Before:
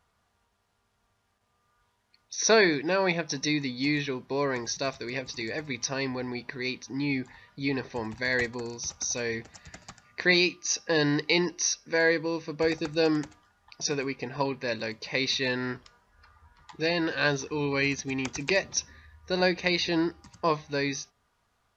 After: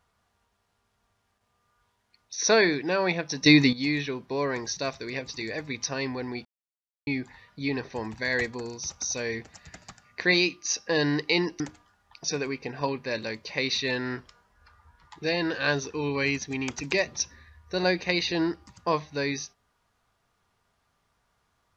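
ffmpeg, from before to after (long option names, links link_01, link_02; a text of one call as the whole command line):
ffmpeg -i in.wav -filter_complex "[0:a]asplit=6[link_01][link_02][link_03][link_04][link_05][link_06];[link_01]atrim=end=3.462[link_07];[link_02]atrim=start=3.458:end=3.732,asetpts=PTS-STARTPTS,volume=11dB[link_08];[link_03]atrim=start=3.728:end=6.45,asetpts=PTS-STARTPTS,afade=type=out:start_time=2.718:duration=0.004:curve=hsin[link_09];[link_04]atrim=start=6.45:end=7.07,asetpts=PTS-STARTPTS,volume=0[link_10];[link_05]atrim=start=7.07:end=11.602,asetpts=PTS-STARTPTS,afade=type=in:duration=0.004:curve=hsin[link_11];[link_06]atrim=start=13.168[link_12];[link_07][link_08]acrossfade=duration=0.004:curve1=hsin:curve2=hsin[link_13];[link_09][link_10][link_11]concat=n=3:v=0:a=1[link_14];[link_13][link_14]acrossfade=duration=0.004:curve1=hsin:curve2=hsin[link_15];[link_15][link_12]acrossfade=duration=0.004:curve1=hsin:curve2=hsin" out.wav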